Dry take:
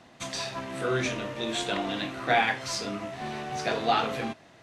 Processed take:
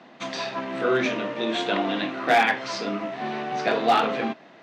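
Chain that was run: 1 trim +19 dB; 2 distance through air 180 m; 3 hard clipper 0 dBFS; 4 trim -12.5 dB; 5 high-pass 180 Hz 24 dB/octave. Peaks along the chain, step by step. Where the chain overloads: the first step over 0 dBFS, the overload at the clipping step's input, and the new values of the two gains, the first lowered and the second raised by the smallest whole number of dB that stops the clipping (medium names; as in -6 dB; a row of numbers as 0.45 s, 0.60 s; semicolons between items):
+8.0 dBFS, +6.5 dBFS, 0.0 dBFS, -12.5 dBFS, -7.5 dBFS; step 1, 6.5 dB; step 1 +12 dB, step 4 -5.5 dB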